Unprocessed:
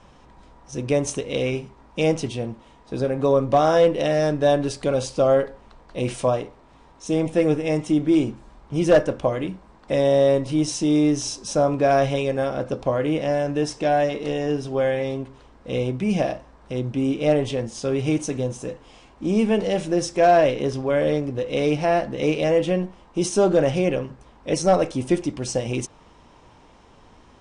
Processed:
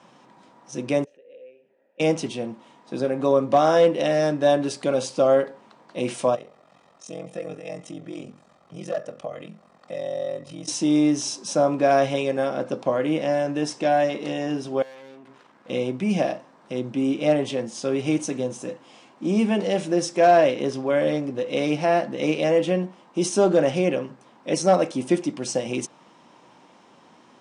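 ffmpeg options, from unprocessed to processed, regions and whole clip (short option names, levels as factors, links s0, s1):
-filter_complex "[0:a]asettb=1/sr,asplit=3[s0][s1][s2];[s0]atrim=end=1.044[s3];[s1]atrim=start=1.04:end=2,asetpts=PTS-STARTPTS,afade=t=in:d=0.004:c=qsin,afade=t=out:st=0.956:d=0.004:c=qsin,aemphasis=mode=reproduction:type=75fm,acompressor=threshold=0.01:ratio=4:attack=3.2:release=140:knee=1:detection=peak,asplit=3[s4][s5][s6];[s4]bandpass=f=530:t=q:w=8,volume=1[s7];[s5]bandpass=f=1840:t=q:w=8,volume=0.501[s8];[s6]bandpass=f=2480:t=q:w=8,volume=0.355[s9];[s7][s8][s9]amix=inputs=3:normalize=0[s10];[s2]atrim=start=1.996[s11];[s3][s10]acrossfade=d=0.004:c1=hsin:c2=qsin[s12];[s12][s11]acrossfade=d=0.004:c1=qsin:c2=hsin,asettb=1/sr,asplit=3[s13][s14][s15];[s13]atrim=end=6.354[s16];[s14]atrim=start=6.35:end=10.68,asetpts=PTS-STARTPTS,afade=t=in:d=0.004:c=qsin,afade=t=out:st=4.326:d=0.004:c=qsin,aecho=1:1:1.6:0.6,atrim=end_sample=190953,aeval=exprs='val(0)*sin(2*PI*22*n/s)':c=same,acompressor=threshold=0.00562:ratio=1.5:attack=3.2:release=140:knee=1:detection=peak[s17];[s15]atrim=start=10.676[s18];[s16][s17]acrossfade=d=0.004:c1=hsin:c2=qsin[s19];[s19][s18]acrossfade=d=0.004:c1=qsin:c2=hsin,asettb=1/sr,asplit=3[s20][s21][s22];[s20]atrim=end=14.824[s23];[s21]atrim=start=14.82:end=15.7,asetpts=PTS-STARTPTS,afade=t=in:d=0.004:c=qsin,afade=t=out:st=0.876:d=0.004:c=qsin,equalizer=f=1600:t=o:w=1.5:g=6.5,acompressor=threshold=0.0178:ratio=4:attack=3.2:release=140:knee=1:detection=peak,aeval=exprs='(tanh(112*val(0)+0.8)-tanh(0.8))/112':c=same[s24];[s22]atrim=start=15.696[s25];[s23][s24]acrossfade=d=0.004:c1=hsin:c2=qsin[s26];[s26][s25]acrossfade=d=0.004:c1=qsin:c2=hsin,highpass=f=160:w=0.5412,highpass=f=160:w=1.3066,bandreject=f=440:w=12"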